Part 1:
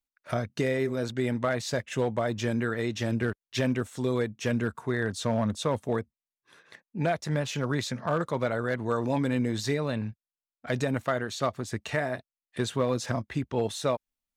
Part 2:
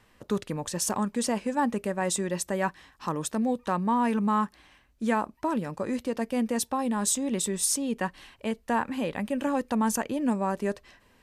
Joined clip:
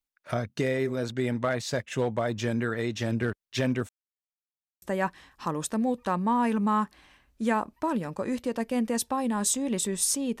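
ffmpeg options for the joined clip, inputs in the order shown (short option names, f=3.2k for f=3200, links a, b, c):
-filter_complex "[0:a]apad=whole_dur=10.4,atrim=end=10.4,asplit=2[a][b];[a]atrim=end=3.89,asetpts=PTS-STARTPTS,afade=t=out:st=3.886:d=0.004:c=hsin[c];[b]atrim=start=3.89:end=4.82,asetpts=PTS-STARTPTS,volume=0[d];[1:a]atrim=start=2.43:end=8.01,asetpts=PTS-STARTPTS,afade=t=in:d=0.004:c=hsin[e];[c][d][e]concat=n=3:v=0:a=1"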